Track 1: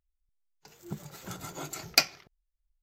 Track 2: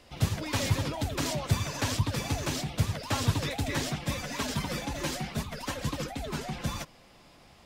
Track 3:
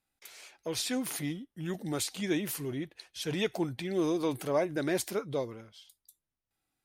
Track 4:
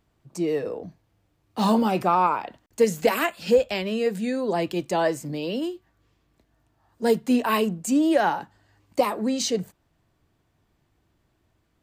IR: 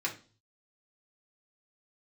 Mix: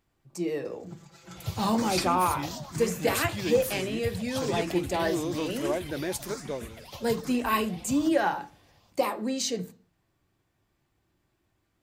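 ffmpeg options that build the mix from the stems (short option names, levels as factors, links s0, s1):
-filter_complex "[0:a]lowpass=6800,aecho=1:1:6:0.95,volume=0.282,asplit=2[s0][s1];[s1]volume=0.316[s2];[1:a]asplit=2[s3][s4];[s4]afreqshift=1.1[s5];[s3][s5]amix=inputs=2:normalize=1,adelay=1250,volume=0.501,asplit=2[s6][s7];[s7]volume=0.188[s8];[2:a]adelay=1150,volume=0.794[s9];[3:a]volume=0.422,asplit=3[s10][s11][s12];[s11]volume=0.447[s13];[s12]apad=whole_len=124932[s14];[s0][s14]sidechaincompress=threshold=0.02:ratio=8:attack=16:release=357[s15];[4:a]atrim=start_sample=2205[s16];[s2][s13]amix=inputs=2:normalize=0[s17];[s17][s16]afir=irnorm=-1:irlink=0[s18];[s8]aecho=0:1:209|418|627|836|1045|1254|1463|1672|1881:1|0.59|0.348|0.205|0.121|0.0715|0.0422|0.0249|0.0147[s19];[s15][s6][s9][s10][s18][s19]amix=inputs=6:normalize=0,highshelf=f=7100:g=4"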